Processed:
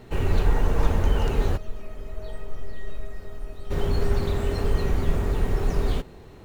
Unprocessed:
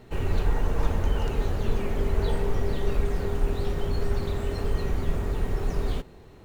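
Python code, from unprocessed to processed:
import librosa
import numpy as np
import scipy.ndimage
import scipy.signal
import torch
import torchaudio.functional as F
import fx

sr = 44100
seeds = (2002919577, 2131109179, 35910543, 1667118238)

y = fx.comb_fb(x, sr, f0_hz=630.0, decay_s=0.21, harmonics='all', damping=0.0, mix_pct=90, at=(1.56, 3.7), fade=0.02)
y = y * 10.0 ** (3.5 / 20.0)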